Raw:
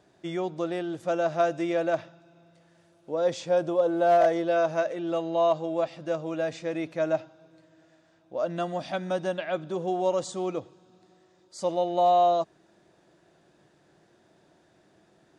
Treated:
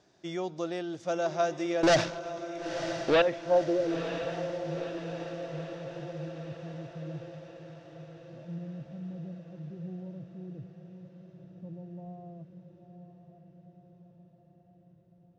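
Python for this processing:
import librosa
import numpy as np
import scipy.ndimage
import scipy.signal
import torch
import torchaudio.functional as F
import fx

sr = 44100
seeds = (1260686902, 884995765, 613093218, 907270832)

y = fx.leveller(x, sr, passes=5, at=(1.83, 3.22))
y = fx.filter_sweep_lowpass(y, sr, from_hz=5800.0, to_hz=140.0, start_s=3.03, end_s=4.06, q=2.8)
y = fx.echo_diffused(y, sr, ms=972, feedback_pct=59, wet_db=-9.0)
y = y * librosa.db_to_amplitude(-4.0)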